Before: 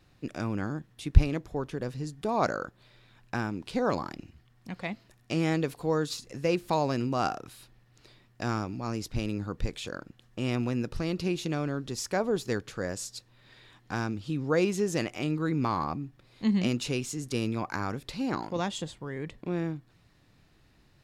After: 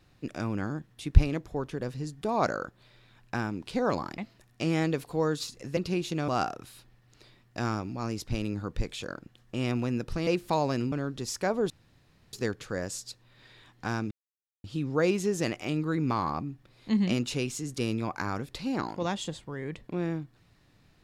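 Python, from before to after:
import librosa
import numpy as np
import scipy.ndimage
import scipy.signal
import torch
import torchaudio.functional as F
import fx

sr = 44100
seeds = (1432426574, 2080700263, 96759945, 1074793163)

y = fx.edit(x, sr, fx.cut(start_s=4.18, length_s=0.7),
    fx.swap(start_s=6.47, length_s=0.65, other_s=11.11, other_length_s=0.51),
    fx.insert_room_tone(at_s=12.4, length_s=0.63),
    fx.insert_silence(at_s=14.18, length_s=0.53), tone=tone)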